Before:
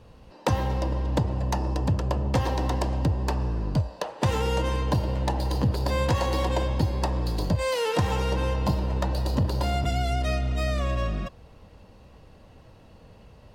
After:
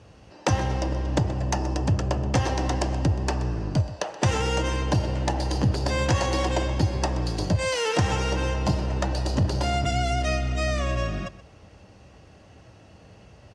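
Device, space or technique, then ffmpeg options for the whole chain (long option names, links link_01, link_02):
car door speaker: -af "highpass=81,equalizer=frequency=150:width_type=q:width=4:gain=-4,equalizer=frequency=230:width_type=q:width=4:gain=-6,equalizer=frequency=490:width_type=q:width=4:gain=-6,equalizer=frequency=990:width_type=q:width=4:gain=-7,equalizer=frequency=3900:width_type=q:width=4:gain=-5,equalizer=frequency=6000:width_type=q:width=4:gain=5,lowpass=frequency=9100:width=0.5412,lowpass=frequency=9100:width=1.3066,aecho=1:1:127:0.15,volume=4.5dB"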